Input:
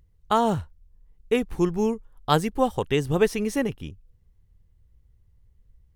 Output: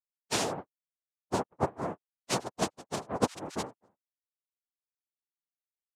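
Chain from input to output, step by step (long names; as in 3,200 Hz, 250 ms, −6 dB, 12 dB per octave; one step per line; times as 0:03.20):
spectral dynamics exaggerated over time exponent 3
cochlear-implant simulation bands 2
level −5 dB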